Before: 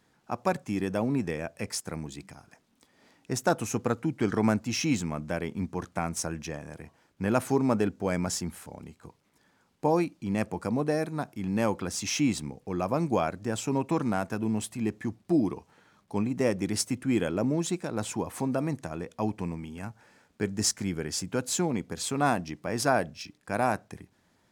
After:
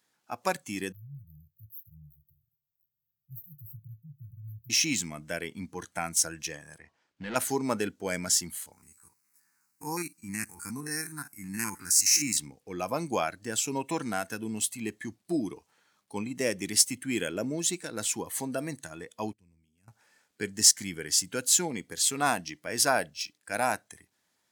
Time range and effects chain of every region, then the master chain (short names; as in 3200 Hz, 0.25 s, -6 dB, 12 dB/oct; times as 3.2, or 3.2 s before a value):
0.92–4.7 brick-wall FIR band-stop 160–13000 Hz + doubler 27 ms -13 dB
6.78–7.36 overloaded stage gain 27.5 dB + air absorption 100 m
8.72–12.37 stepped spectrum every 50 ms + high shelf 2800 Hz +10 dB + fixed phaser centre 1400 Hz, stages 4
19.33–19.88 HPF 45 Hz + passive tone stack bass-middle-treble 10-0-1
whole clip: tilt +3 dB/oct; spectral noise reduction 9 dB